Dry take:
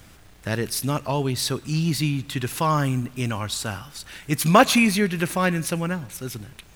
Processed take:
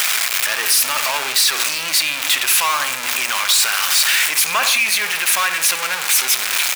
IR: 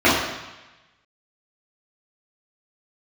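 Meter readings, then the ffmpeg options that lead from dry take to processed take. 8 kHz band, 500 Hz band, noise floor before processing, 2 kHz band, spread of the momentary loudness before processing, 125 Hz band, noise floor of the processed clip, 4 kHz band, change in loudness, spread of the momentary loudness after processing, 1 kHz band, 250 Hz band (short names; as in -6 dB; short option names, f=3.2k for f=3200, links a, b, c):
+15.5 dB, -7.0 dB, -49 dBFS, +11.0 dB, 16 LU, under -25 dB, -24 dBFS, +14.0 dB, +8.0 dB, 4 LU, +2.5 dB, -19.5 dB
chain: -filter_complex "[0:a]aeval=exprs='val(0)+0.5*0.168*sgn(val(0))':c=same,highpass=1.4k,equalizer=f=2.4k:w=7.9:g=5,alimiter=limit=-15dB:level=0:latency=1:release=53,asplit=2[a][b];[b]adelay=68,lowpass=f=2k:p=1,volume=-8.5dB,asplit=2[c][d];[d]adelay=68,lowpass=f=2k:p=1,volume=0.5,asplit=2[e][f];[f]adelay=68,lowpass=f=2k:p=1,volume=0.5,asplit=2[g][h];[h]adelay=68,lowpass=f=2k:p=1,volume=0.5,asplit=2[i][j];[j]adelay=68,lowpass=f=2k:p=1,volume=0.5,asplit=2[k][l];[l]adelay=68,lowpass=f=2k:p=1,volume=0.5[m];[a][c][e][g][i][k][m]amix=inputs=7:normalize=0,volume=7.5dB"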